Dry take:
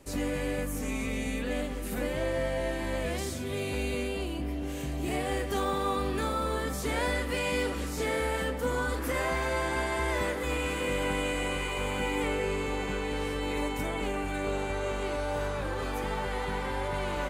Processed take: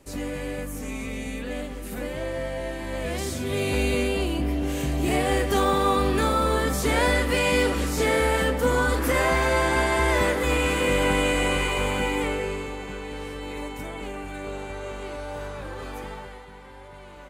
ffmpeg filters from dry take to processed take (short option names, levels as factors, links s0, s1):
-af "volume=2.51,afade=t=in:st=2.87:d=0.88:silence=0.398107,afade=t=out:st=11.61:d=1.15:silence=0.298538,afade=t=out:st=15.99:d=0.46:silence=0.316228"